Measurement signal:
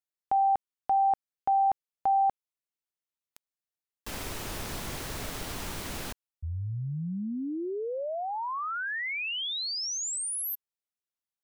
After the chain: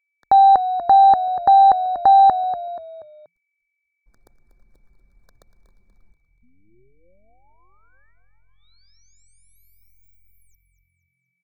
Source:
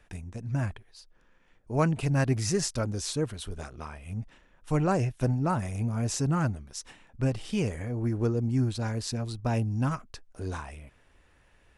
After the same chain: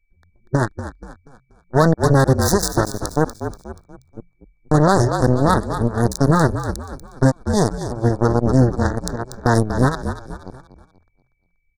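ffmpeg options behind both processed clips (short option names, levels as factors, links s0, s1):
-filter_complex "[0:a]aeval=exprs='0.266*(cos(1*acos(clip(val(0)/0.266,-1,1)))-cos(1*PI/2))+0.0237*(cos(2*acos(clip(val(0)/0.266,-1,1)))-cos(2*PI/2))+0.0422*(cos(7*acos(clip(val(0)/0.266,-1,1)))-cos(7*PI/2))+0.00266*(cos(8*acos(clip(val(0)/0.266,-1,1)))-cos(8*PI/2))':c=same,anlmdn=0.0158,aeval=exprs='val(0)+0.0158*sin(2*PI*2300*n/s)':c=same,asuperstop=centerf=2600:order=12:qfactor=1.4,asplit=5[s0][s1][s2][s3][s4];[s1]adelay=240,afreqshift=-44,volume=0.266[s5];[s2]adelay=480,afreqshift=-88,volume=0.11[s6];[s3]adelay=720,afreqshift=-132,volume=0.0447[s7];[s4]adelay=960,afreqshift=-176,volume=0.0184[s8];[s0][s5][s6][s7][s8]amix=inputs=5:normalize=0,alimiter=level_in=10:limit=0.891:release=50:level=0:latency=1,volume=0.794"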